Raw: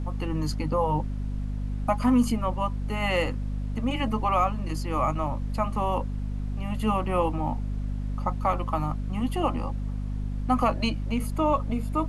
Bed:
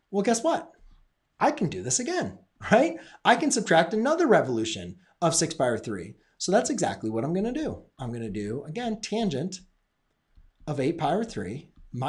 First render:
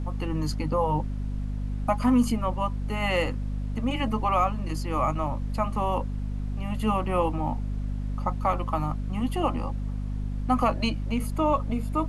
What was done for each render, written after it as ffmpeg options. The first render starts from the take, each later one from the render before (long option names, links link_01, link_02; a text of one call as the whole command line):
ffmpeg -i in.wav -af anull out.wav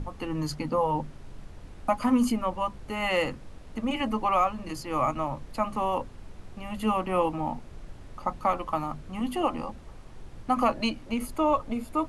ffmpeg -i in.wav -af "bandreject=frequency=50:width_type=h:width=6,bandreject=frequency=100:width_type=h:width=6,bandreject=frequency=150:width_type=h:width=6,bandreject=frequency=200:width_type=h:width=6,bandreject=frequency=250:width_type=h:width=6" out.wav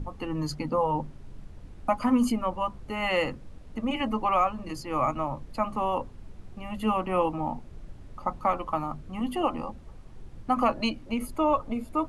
ffmpeg -i in.wav -af "afftdn=noise_reduction=6:noise_floor=-46" out.wav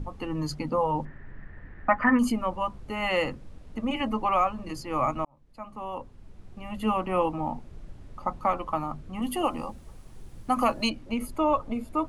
ffmpeg -i in.wav -filter_complex "[0:a]asettb=1/sr,asplit=3[link_01][link_02][link_03];[link_01]atrim=end=1.054[link_04];[link_02]atrim=start=1.05:end=2.19,asetpts=PTS-STARTPTS,afade=type=in:duration=0.004:curve=qsin,afade=type=out:start_time=1.136:duration=0.004:curve=qsin,lowpass=frequency=1800:width_type=q:width=13[link_05];[link_03]atrim=start=2.186[link_06];[link_04][link_05]acrossfade=duration=0.004:curve1=hsin:curve2=qsin[link_07];[link_07][link_06]acrossfade=duration=0.004:curve1=qsin:curve2=hsin,asettb=1/sr,asplit=3[link_08][link_09][link_10];[link_08]atrim=end=9.224[link_11];[link_09]atrim=start=9.22:end=10.9,asetpts=PTS-STARTPTS,afade=type=in:duration=0.004:curve=qsin,afade=type=out:start_time=1.676:duration=0.004:curve=qsin,aemphasis=mode=production:type=50fm[link_12];[link_10]atrim=start=10.896[link_13];[link_11][link_12]acrossfade=duration=0.004:curve1=hsin:curve2=qsin[link_14];[link_14][link_13]acrossfade=duration=0.004:curve1=qsin:curve2=hsin,asplit=2[link_15][link_16];[link_15]atrim=end=5.25,asetpts=PTS-STARTPTS,afade=type=out:start_time=5.246:duration=0.004:curve=hsin[link_17];[link_16]atrim=start=5.25,asetpts=PTS-STARTPTS,afade=type=in:duration=1.6[link_18];[link_17][link_18]concat=n=2:v=0:a=1" out.wav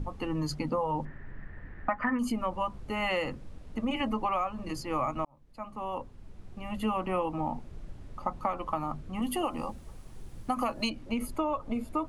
ffmpeg -i in.wav -af "acompressor=threshold=-26dB:ratio=6" out.wav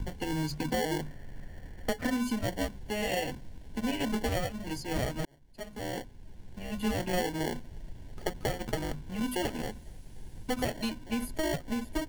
ffmpeg -i in.wav -filter_complex "[0:a]acrossover=split=210|1900[link_01][link_02][link_03];[link_02]acrusher=samples=35:mix=1:aa=0.000001[link_04];[link_03]asoftclip=type=hard:threshold=-36dB[link_05];[link_01][link_04][link_05]amix=inputs=3:normalize=0" out.wav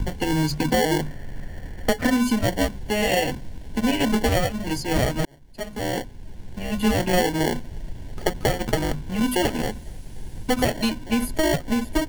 ffmpeg -i in.wav -af "volume=10dB" out.wav